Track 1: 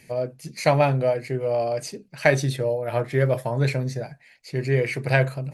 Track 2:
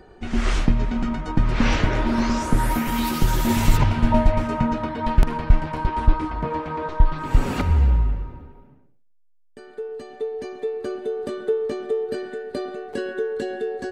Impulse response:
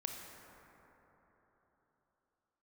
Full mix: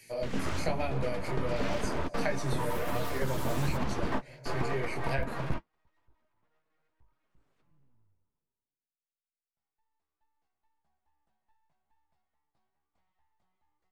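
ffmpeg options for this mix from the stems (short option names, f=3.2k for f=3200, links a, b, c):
-filter_complex "[0:a]highshelf=f=2.1k:g=11,flanger=delay=17:depth=7.9:speed=1.3,volume=-3.5dB,asplit=3[a][b][c];[b]volume=-9dB[d];[1:a]aeval=exprs='abs(val(0))':c=same,asoftclip=type=tanh:threshold=-5.5dB,volume=-0.5dB[e];[c]apad=whole_len=613665[f];[e][f]sidechaingate=range=-44dB:threshold=-48dB:ratio=16:detection=peak[g];[2:a]atrim=start_sample=2205[h];[d][h]afir=irnorm=-1:irlink=0[i];[a][g][i]amix=inputs=3:normalize=0,acrossover=split=110|1500[j][k][l];[j]acompressor=threshold=-27dB:ratio=4[m];[k]acompressor=threshold=-26dB:ratio=4[n];[l]acompressor=threshold=-39dB:ratio=4[o];[m][n][o]amix=inputs=3:normalize=0,flanger=delay=1.8:depth=6.5:regen=-55:speed=0.99:shape=triangular"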